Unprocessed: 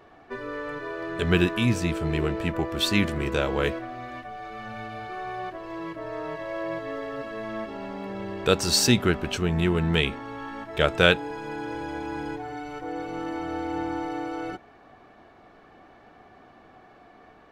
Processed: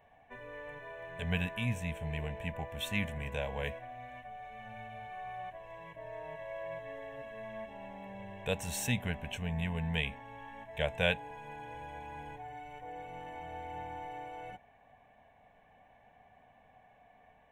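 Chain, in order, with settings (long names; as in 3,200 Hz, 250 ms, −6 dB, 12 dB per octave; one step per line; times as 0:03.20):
phaser with its sweep stopped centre 1,300 Hz, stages 6
level −7.5 dB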